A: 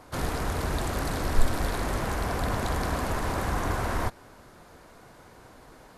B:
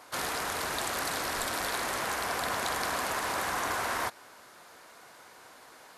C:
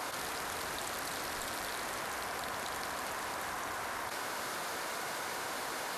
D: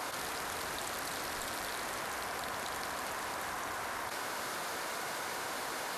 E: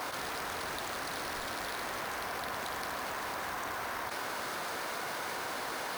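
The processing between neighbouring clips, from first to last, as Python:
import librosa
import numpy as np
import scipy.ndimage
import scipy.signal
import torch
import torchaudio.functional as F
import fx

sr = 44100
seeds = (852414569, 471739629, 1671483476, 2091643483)

y1 = fx.highpass(x, sr, hz=1300.0, slope=6)
y1 = F.gain(torch.from_numpy(y1), 4.5).numpy()
y2 = fx.env_flatten(y1, sr, amount_pct=100)
y2 = F.gain(torch.from_numpy(y2), -8.5).numpy()
y3 = y2
y4 = np.repeat(scipy.signal.resample_poly(y3, 1, 3), 3)[:len(y3)]
y4 = F.gain(torch.from_numpy(y4), 1.5).numpy()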